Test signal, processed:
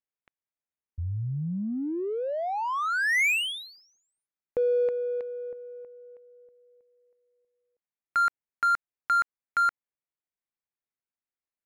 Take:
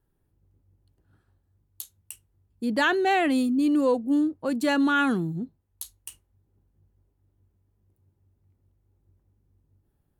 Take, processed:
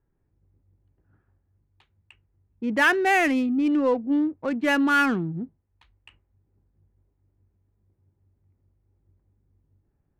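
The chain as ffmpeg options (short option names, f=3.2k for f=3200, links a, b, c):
-af "lowpass=f=2.3k:t=q:w=2.4,adynamicsmooth=sensitivity=7:basefreq=1.7k"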